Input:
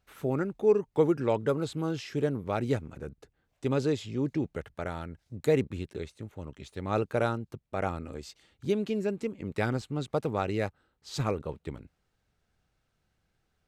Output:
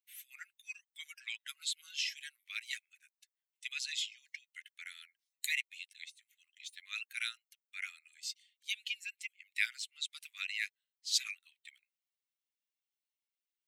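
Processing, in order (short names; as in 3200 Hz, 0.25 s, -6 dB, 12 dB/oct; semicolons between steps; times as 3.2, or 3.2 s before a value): per-bin expansion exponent 1.5; steep high-pass 2000 Hz 48 dB/oct; gain +11 dB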